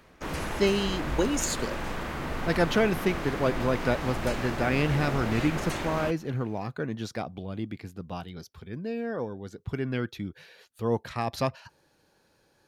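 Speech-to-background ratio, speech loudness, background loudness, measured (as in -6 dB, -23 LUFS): 3.5 dB, -30.0 LUFS, -33.5 LUFS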